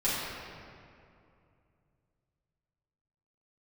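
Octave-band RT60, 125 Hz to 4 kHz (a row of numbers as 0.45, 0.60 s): 3.6, 2.9, 2.6, 2.4, 2.0, 1.5 s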